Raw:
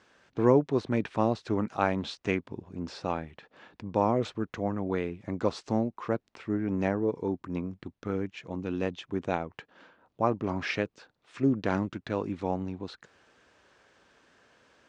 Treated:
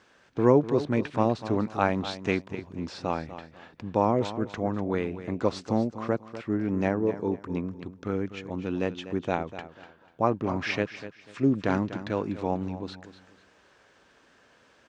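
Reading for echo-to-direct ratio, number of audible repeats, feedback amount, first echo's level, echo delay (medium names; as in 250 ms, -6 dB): -12.5 dB, 2, 27%, -13.0 dB, 246 ms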